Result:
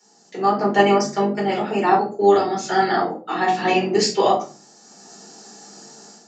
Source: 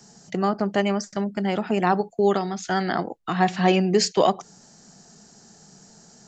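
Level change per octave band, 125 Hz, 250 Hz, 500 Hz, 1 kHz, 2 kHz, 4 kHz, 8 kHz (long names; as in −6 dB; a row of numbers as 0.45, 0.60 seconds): −3.5, +0.5, +4.5, +6.0, +4.5, +3.0, +2.5 decibels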